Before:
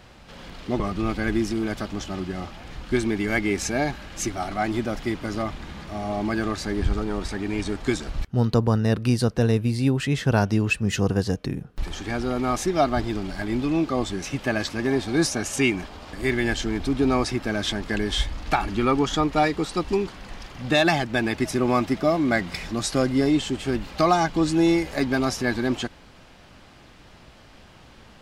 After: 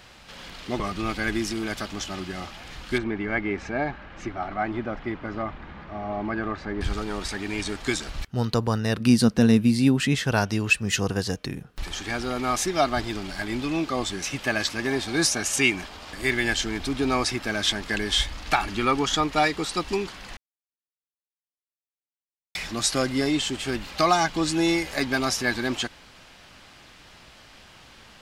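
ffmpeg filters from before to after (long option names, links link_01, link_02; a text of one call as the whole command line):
ffmpeg -i in.wav -filter_complex "[0:a]asettb=1/sr,asplit=3[link_01][link_02][link_03];[link_01]atrim=end=2.984[link_04];[link_02]atrim=start=2.98:end=6.81,asetpts=PTS-STARTPTS,afade=type=in:duration=0.004:curve=qsin,afade=type=out:start_time=3.826:duration=0.004:curve=qsin,lowpass=1600[link_05];[link_03]atrim=start=6.806[link_06];[link_04][link_05]acrossfade=duration=0.004:curve1=hsin:curve2=qsin[link_07];[link_07][link_06]acrossfade=duration=0.004:curve1=qsin:curve2=hsin,asettb=1/sr,asplit=3[link_08][link_09][link_10];[link_08]atrim=end=9.004[link_11];[link_09]atrim=start=9:end=10.15,asetpts=PTS-STARTPTS,afade=type=in:duration=0.004:curve=qsin,afade=type=out:start_time=1.146:duration=0.004:curve=qsin,equalizer=frequency=220:width_type=o:width=0.77:gain=12.5[link_12];[link_10]atrim=start=10.146[link_13];[link_11][link_12]acrossfade=duration=0.004:curve1=hsin:curve2=qsin[link_14];[link_14][link_13]acrossfade=duration=0.004:curve1=qsin:curve2=hsin,asplit=3[link_15][link_16][link_17];[link_15]atrim=end=20.37,asetpts=PTS-STARTPTS,afade=type=out:start_time=20.366:duration=0.004:curve=hsin[link_18];[link_16]atrim=start=20.37:end=22.55,asetpts=PTS-STARTPTS,volume=0[link_19];[link_17]atrim=start=22.55,asetpts=PTS-STARTPTS,afade=type=in:duration=0.004:curve=hsin[link_20];[link_18][link_19][link_20]concat=n=3:v=0:a=1,tiltshelf=frequency=970:gain=-5" out.wav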